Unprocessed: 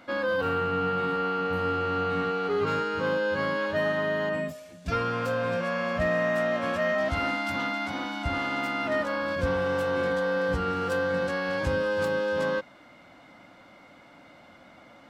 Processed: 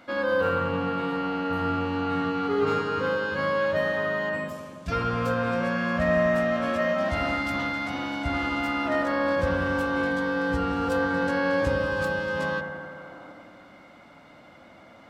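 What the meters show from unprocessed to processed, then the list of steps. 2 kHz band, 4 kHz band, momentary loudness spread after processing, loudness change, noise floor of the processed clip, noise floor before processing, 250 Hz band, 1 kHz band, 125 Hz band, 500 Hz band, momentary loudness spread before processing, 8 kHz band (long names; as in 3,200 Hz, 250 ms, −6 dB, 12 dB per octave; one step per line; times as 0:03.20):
+2.0 dB, 0.0 dB, 6 LU, +1.5 dB, −51 dBFS, −53 dBFS, +4.5 dB, +1.5 dB, +2.0 dB, +0.5 dB, 3 LU, can't be measured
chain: gain on a spectral selection 0:12.61–0:13.32, 270–1,500 Hz +7 dB
delay with a low-pass on its return 85 ms, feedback 75%, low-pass 1,700 Hz, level −5.5 dB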